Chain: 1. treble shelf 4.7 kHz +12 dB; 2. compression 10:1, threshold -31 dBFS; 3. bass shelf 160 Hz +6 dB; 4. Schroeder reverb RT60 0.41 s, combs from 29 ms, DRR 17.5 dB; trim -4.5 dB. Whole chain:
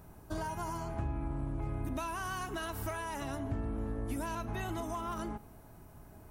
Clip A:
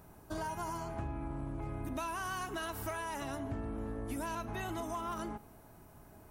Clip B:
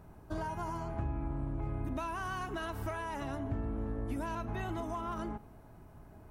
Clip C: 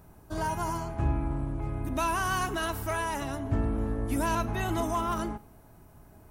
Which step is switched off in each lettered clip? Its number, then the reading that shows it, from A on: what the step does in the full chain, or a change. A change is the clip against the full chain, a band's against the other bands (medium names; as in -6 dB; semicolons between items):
3, 125 Hz band -4.0 dB; 1, 8 kHz band -8.0 dB; 2, mean gain reduction 5.5 dB